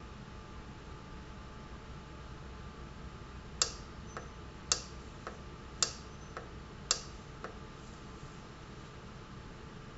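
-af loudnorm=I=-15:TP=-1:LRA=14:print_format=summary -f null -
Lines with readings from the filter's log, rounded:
Input Integrated:    -42.5 LUFS
Input True Peak:      -8.1 dBTP
Input LRA:            11.1 LU
Input Threshold:     -52.5 LUFS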